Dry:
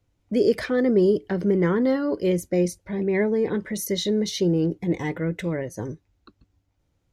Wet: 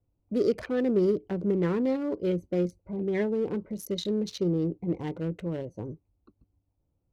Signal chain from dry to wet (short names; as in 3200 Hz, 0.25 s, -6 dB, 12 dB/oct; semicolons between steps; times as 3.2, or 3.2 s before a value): Wiener smoothing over 25 samples; gain -5 dB